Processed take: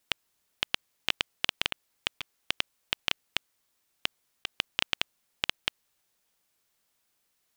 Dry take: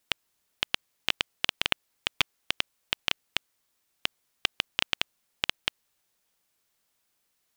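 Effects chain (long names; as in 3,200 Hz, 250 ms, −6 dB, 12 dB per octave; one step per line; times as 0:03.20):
compressor whose output falls as the input rises −27 dBFS, ratio −0.5
level −1 dB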